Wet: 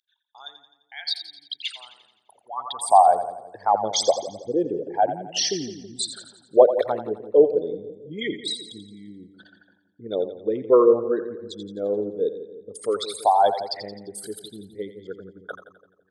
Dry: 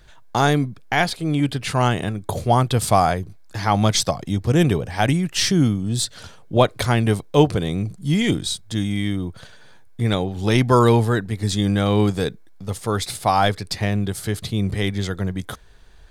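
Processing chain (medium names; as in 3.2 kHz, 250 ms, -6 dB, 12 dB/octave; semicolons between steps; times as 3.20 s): resonances exaggerated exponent 3; two-band feedback delay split 460 Hz, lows 162 ms, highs 86 ms, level -10.5 dB; high-pass sweep 3.5 kHz -> 500 Hz, 2.26–3.18 s; trim -3.5 dB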